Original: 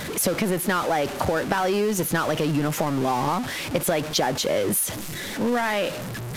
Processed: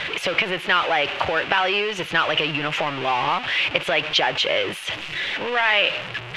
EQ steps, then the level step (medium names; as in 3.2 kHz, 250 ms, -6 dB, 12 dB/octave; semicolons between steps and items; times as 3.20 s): resonant low-pass 2.8 kHz, resonance Q 3.5; peaking EQ 230 Hz -11.5 dB 0.4 oct; bass shelf 490 Hz -11.5 dB; +4.5 dB